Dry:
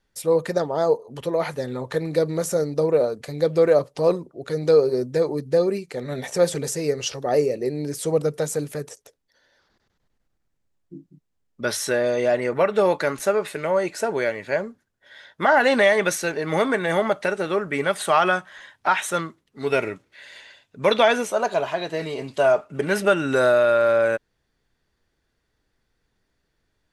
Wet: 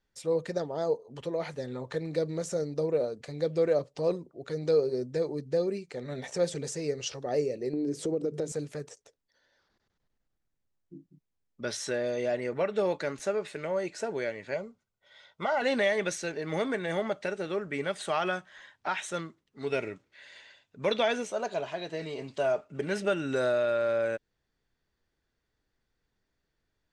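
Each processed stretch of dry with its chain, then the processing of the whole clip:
7.73–8.52 bell 330 Hz +15 dB 1.6 oct + notches 50/100/150/200 Hz + compressor 3:1, threshold -21 dBFS
14.54–15.62 Butterworth band-stop 1700 Hz, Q 4.2 + bell 290 Hz -12.5 dB 0.36 oct
whole clip: LPF 8200 Hz 24 dB/oct; dynamic EQ 1100 Hz, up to -6 dB, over -35 dBFS, Q 1.1; gain -7.5 dB

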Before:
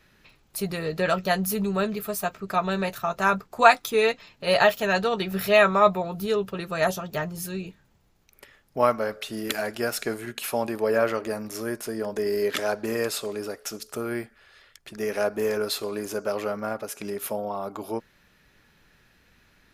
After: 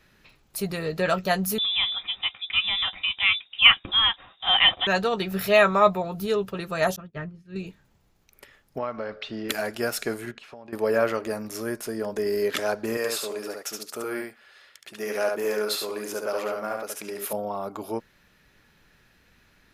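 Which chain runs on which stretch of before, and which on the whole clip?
1.58–4.87 inverted band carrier 3700 Hz + bell 750 Hz +9 dB 0.22 oct
6.96–7.56 LPF 1900 Hz + expander -30 dBFS + bell 780 Hz -13 dB 1.3 oct
8.78–9.49 LPF 4500 Hz 24 dB/oct + compressor 3:1, threshold -28 dBFS
10.31–10.73 compressor 12:1, threshold -38 dBFS + air absorption 150 m
12.97–17.33 HPF 410 Hz 6 dB/oct + echo 71 ms -3.5 dB
whole clip: dry

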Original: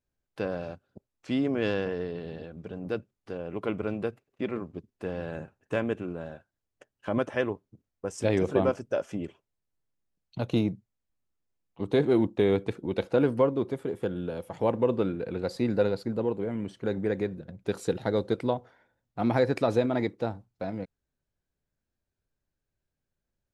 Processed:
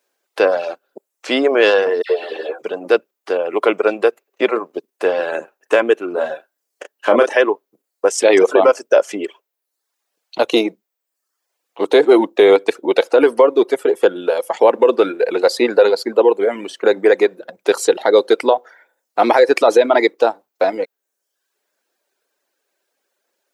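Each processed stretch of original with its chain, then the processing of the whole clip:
2.02–2.62 HPF 320 Hz 24 dB/oct + doubler 13 ms -5 dB + dispersion lows, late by 78 ms, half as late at 1900 Hz
6.12–7.37 bell 210 Hz +4 dB 1.3 oct + doubler 33 ms -5 dB
whole clip: reverb removal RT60 0.76 s; HPF 390 Hz 24 dB/oct; maximiser +21.5 dB; gain -1 dB

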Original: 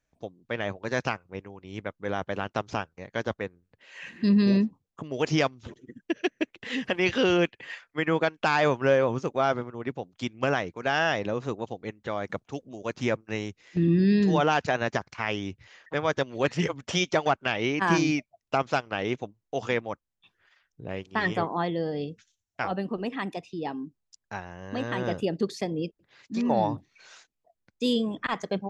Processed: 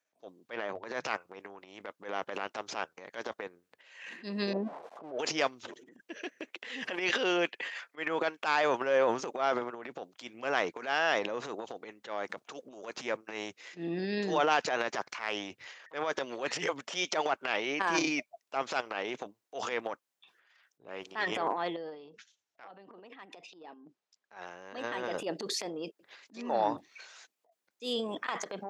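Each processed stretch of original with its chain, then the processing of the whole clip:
0.56–1.04 high shelf 3300 Hz -8.5 dB + de-hum 51 Hz, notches 3
4.53–5.19 switching spikes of -21.5 dBFS + synth low-pass 680 Hz, resonance Q 2.2
21.76–24.37 compressor, threshold -41 dBFS + air absorption 88 m
whole clip: transient shaper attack -10 dB, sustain +10 dB; HPF 420 Hz 12 dB/oct; gain -2.5 dB

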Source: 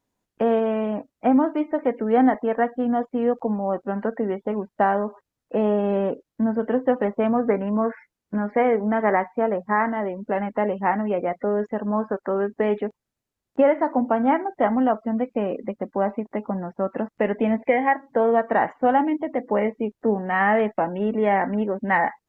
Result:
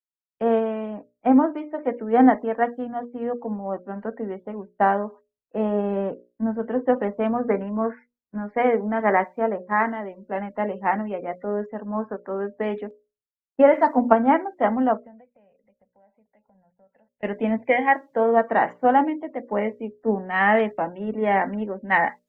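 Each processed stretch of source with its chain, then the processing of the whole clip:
13.73–14.13 high shelf 2200 Hz +10 dB + comb 4.4 ms, depth 50%
14.97–17.23 fixed phaser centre 1200 Hz, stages 6 + compressor, threshold -36 dBFS
whole clip: notches 60/120/180/240/300/360/420/480/540/600 Hz; three-band expander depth 100%; gain -1 dB

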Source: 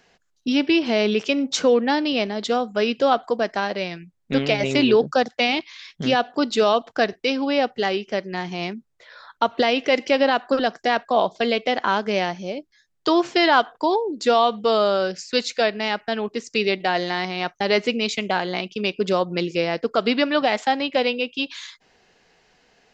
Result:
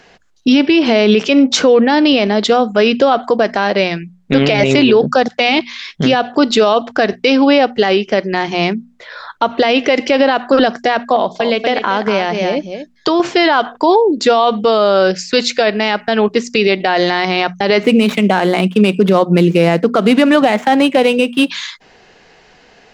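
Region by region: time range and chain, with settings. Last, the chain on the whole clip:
11.16–13.2 echo 0.236 s -10.5 dB + compressor 4:1, threshold -24 dBFS
17.83–21.5 median filter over 9 samples + resonant low shelf 120 Hz -12.5 dB, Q 3
whole clip: high shelf 7000 Hz -9.5 dB; notches 60/120/180/240 Hz; maximiser +15 dB; gain -1 dB

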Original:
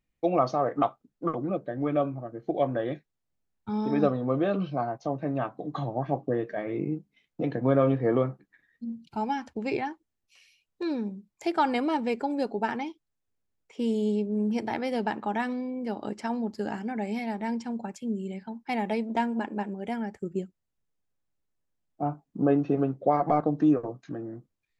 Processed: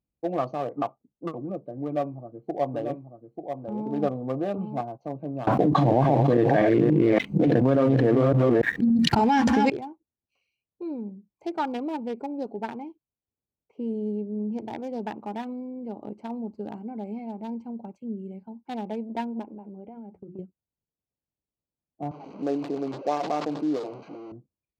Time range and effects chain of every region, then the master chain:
1.85–4.81 dynamic EQ 780 Hz, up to +6 dB, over -40 dBFS, Q 2.7 + echo 0.889 s -6 dB
5.47–9.7 reverse delay 0.286 s, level -3.5 dB + fast leveller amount 100%
19.43–20.39 bell 6100 Hz -12.5 dB 1.3 oct + notches 60/120/180/240/300/360 Hz + compressor 12:1, threshold -34 dBFS
22.11–24.32 delta modulation 32 kbps, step -29 dBFS + HPF 280 Hz + sustainer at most 63 dB/s
whole clip: Wiener smoothing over 25 samples; HPF 47 Hz; notch 1300 Hz, Q 18; gain -2.5 dB

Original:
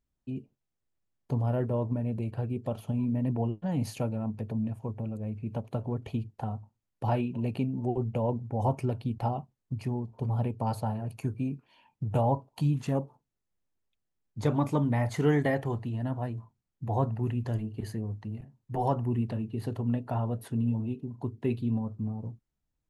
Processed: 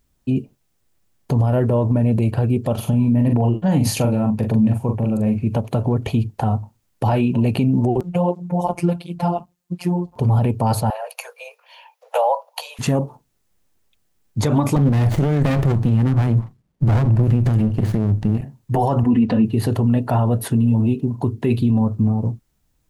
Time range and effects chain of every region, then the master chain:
2.74–5.47 tremolo 1.6 Hz, depth 31% + doubler 42 ms -6 dB
8–10.16 robotiser 175 Hz + tape flanging out of phase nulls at 1.4 Hz, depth 6.3 ms
10.9–12.79 Chebyshev high-pass 480 Hz, order 8 + bell 8100 Hz -7 dB 0.35 oct
14.76–18.38 bell 160 Hz +9 dB 1.2 oct + running maximum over 33 samples
19.03–19.45 air absorption 110 m + comb 4 ms, depth 74%
whole clip: high shelf 5400 Hz +4.5 dB; maximiser +24.5 dB; gain -8 dB

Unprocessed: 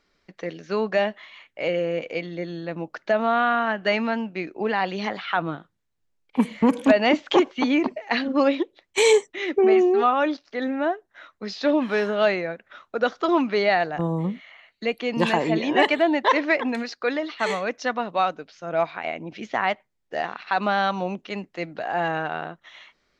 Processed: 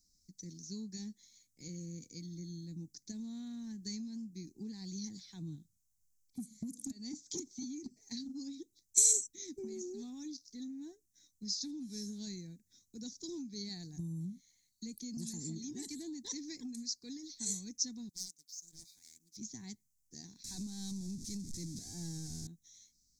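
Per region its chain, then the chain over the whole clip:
18.09–19.37 differentiator + sample leveller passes 1 + Doppler distortion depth 0.36 ms
20.44–22.47 zero-crossing step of -28 dBFS + LPF 4100 Hz
whole clip: elliptic band-stop 260–6200 Hz, stop band 40 dB; compressor 5:1, threshold -32 dBFS; EQ curve 100 Hz 0 dB, 270 Hz -8 dB, 3900 Hz +13 dB; gain -2.5 dB

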